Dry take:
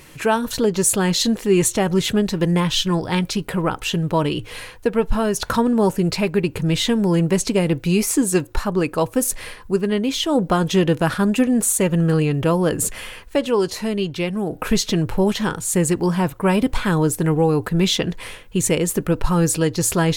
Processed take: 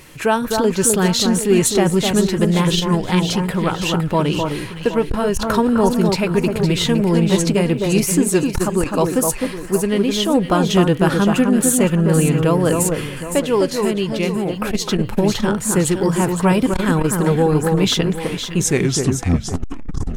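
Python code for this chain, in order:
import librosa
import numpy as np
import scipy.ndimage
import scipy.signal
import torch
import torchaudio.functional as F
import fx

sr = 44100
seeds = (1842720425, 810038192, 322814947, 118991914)

y = fx.tape_stop_end(x, sr, length_s=1.68)
y = fx.echo_alternate(y, sr, ms=256, hz=1600.0, feedback_pct=62, wet_db=-4.0)
y = fx.transformer_sat(y, sr, knee_hz=150.0)
y = y * 10.0 ** (1.5 / 20.0)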